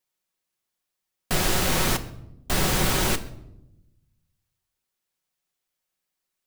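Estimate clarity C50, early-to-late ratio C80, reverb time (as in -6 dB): 15.5 dB, 17.5 dB, 0.90 s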